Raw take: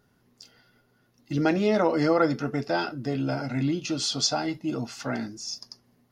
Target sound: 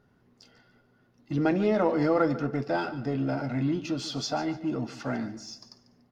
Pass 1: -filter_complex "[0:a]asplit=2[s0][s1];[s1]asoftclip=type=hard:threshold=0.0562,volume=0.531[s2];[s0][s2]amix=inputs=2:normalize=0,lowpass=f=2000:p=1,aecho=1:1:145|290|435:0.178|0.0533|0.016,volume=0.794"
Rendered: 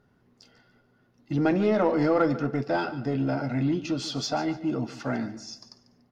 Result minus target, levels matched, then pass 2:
hard clipper: distortion -5 dB
-filter_complex "[0:a]asplit=2[s0][s1];[s1]asoftclip=type=hard:threshold=0.0141,volume=0.531[s2];[s0][s2]amix=inputs=2:normalize=0,lowpass=f=2000:p=1,aecho=1:1:145|290|435:0.178|0.0533|0.016,volume=0.794"

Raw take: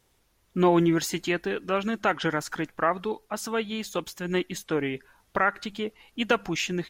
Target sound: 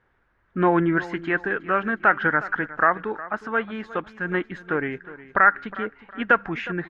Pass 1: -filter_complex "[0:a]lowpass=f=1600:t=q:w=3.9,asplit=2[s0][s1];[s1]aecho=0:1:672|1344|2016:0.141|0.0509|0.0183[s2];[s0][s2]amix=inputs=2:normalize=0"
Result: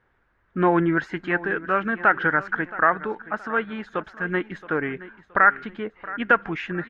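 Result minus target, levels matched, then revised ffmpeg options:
echo 310 ms late
-filter_complex "[0:a]lowpass=f=1600:t=q:w=3.9,asplit=2[s0][s1];[s1]aecho=0:1:362|724|1086:0.141|0.0509|0.0183[s2];[s0][s2]amix=inputs=2:normalize=0"

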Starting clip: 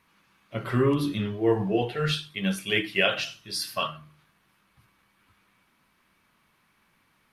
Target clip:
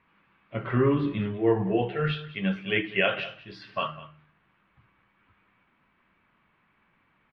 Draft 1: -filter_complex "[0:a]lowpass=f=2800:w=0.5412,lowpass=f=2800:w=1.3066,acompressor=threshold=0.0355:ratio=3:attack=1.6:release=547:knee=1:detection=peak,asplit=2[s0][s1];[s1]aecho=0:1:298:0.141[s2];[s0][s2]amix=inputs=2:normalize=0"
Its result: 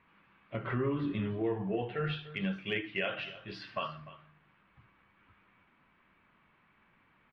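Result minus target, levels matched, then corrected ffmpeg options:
compression: peak gain reduction +11.5 dB; echo 100 ms late
-filter_complex "[0:a]lowpass=f=2800:w=0.5412,lowpass=f=2800:w=1.3066,asplit=2[s0][s1];[s1]aecho=0:1:198:0.141[s2];[s0][s2]amix=inputs=2:normalize=0"

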